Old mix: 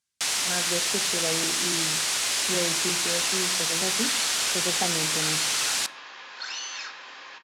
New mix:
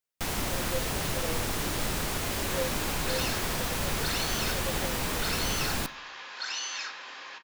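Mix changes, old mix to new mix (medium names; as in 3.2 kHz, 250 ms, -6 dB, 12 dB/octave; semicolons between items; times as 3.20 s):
speech: add cascade formant filter e; first sound: remove frequency weighting ITU-R 468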